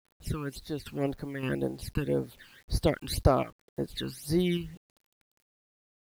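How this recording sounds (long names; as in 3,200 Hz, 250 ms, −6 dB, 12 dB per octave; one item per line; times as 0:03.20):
sample-and-hold tremolo 3.5 Hz, depth 75%
phaser sweep stages 12, 1.9 Hz, lowest notch 610–3,000 Hz
a quantiser's noise floor 10 bits, dither none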